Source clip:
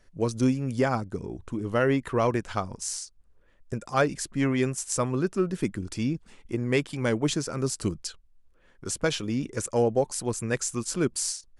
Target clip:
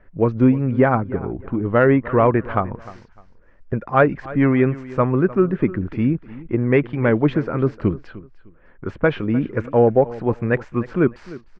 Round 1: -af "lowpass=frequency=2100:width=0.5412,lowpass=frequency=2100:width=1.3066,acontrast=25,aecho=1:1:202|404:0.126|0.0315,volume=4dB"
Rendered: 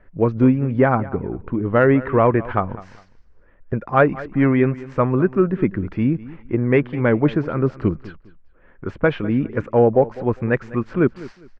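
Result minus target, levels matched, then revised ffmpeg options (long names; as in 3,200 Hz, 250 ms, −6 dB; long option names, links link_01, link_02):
echo 101 ms early
-af "lowpass=frequency=2100:width=0.5412,lowpass=frequency=2100:width=1.3066,acontrast=25,aecho=1:1:303|606:0.126|0.0315,volume=4dB"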